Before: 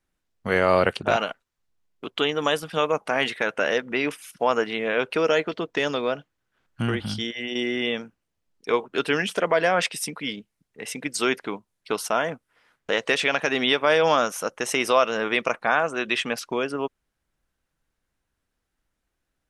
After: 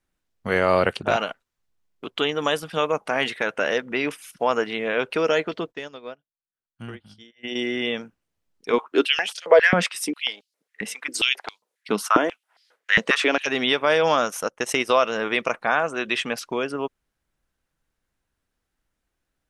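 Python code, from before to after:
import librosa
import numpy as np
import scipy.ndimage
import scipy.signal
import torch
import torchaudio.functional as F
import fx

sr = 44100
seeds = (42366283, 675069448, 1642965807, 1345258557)

y = fx.upward_expand(x, sr, threshold_db=-35.0, expansion=2.5, at=(5.71, 7.43), fade=0.02)
y = fx.filter_held_highpass(y, sr, hz=7.4, low_hz=200.0, high_hz=4500.0, at=(8.72, 13.45), fade=0.02)
y = fx.transient(y, sr, attack_db=2, sustain_db=-11, at=(14.3, 14.96))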